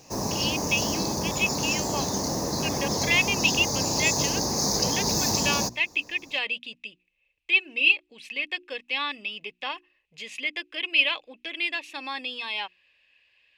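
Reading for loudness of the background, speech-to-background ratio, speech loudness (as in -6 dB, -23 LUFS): -25.5 LUFS, -1.5 dB, -27.0 LUFS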